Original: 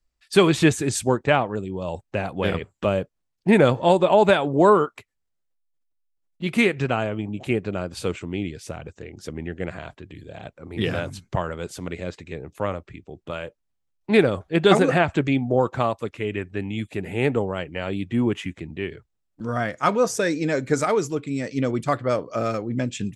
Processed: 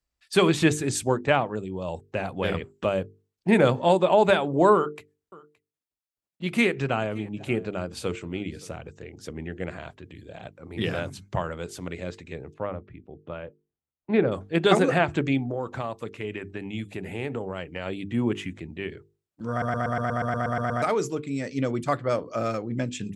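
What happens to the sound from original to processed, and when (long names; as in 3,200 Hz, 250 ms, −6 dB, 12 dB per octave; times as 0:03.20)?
0:04.75–0:08.73: single-tap delay 570 ms −23 dB
0:12.54–0:14.32: head-to-tape spacing loss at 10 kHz 33 dB
0:15.45–0:17.86: downward compressor 3 to 1, threshold −24 dBFS
0:19.50: stutter in place 0.12 s, 11 plays
whole clip: high-pass filter 44 Hz; mains-hum notches 50/100/150/200/250/300/350/400/450 Hz; level −2.5 dB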